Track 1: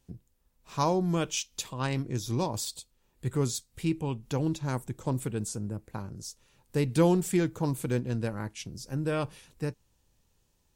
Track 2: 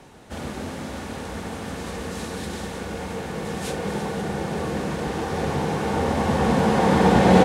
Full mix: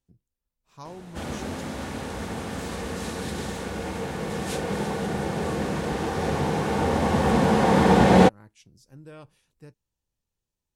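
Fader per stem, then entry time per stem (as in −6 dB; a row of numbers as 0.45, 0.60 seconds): −15.0, −0.5 decibels; 0.00, 0.85 seconds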